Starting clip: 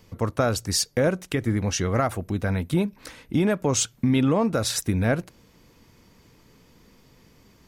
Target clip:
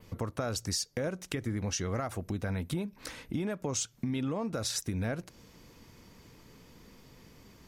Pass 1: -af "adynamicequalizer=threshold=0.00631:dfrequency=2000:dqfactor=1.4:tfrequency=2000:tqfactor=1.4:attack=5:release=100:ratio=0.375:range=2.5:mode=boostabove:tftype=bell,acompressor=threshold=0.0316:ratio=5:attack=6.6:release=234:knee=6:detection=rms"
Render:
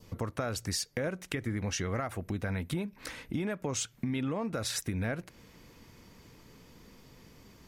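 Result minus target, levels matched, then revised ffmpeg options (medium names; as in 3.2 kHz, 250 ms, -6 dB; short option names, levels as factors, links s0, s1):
2 kHz band +3.5 dB
-af "adynamicequalizer=threshold=0.00631:dfrequency=5800:dqfactor=1.4:tfrequency=5800:tqfactor=1.4:attack=5:release=100:ratio=0.375:range=2.5:mode=boostabove:tftype=bell,acompressor=threshold=0.0316:ratio=5:attack=6.6:release=234:knee=6:detection=rms"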